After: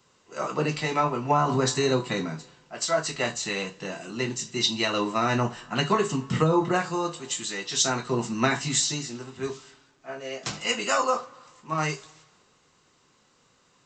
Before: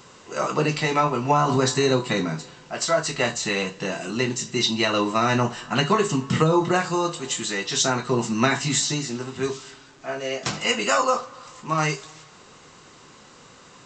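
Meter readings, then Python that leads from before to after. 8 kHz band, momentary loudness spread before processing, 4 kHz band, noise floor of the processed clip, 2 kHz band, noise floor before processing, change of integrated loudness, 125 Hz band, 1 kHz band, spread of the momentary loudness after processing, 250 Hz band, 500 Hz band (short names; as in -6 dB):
-2.0 dB, 9 LU, -3.0 dB, -64 dBFS, -4.0 dB, -49 dBFS, -3.5 dB, -3.5 dB, -3.5 dB, 12 LU, -4.0 dB, -4.0 dB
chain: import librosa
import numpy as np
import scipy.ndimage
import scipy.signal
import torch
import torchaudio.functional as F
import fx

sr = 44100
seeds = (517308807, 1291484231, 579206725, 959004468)

y = fx.band_widen(x, sr, depth_pct=40)
y = y * librosa.db_to_amplitude(-4.0)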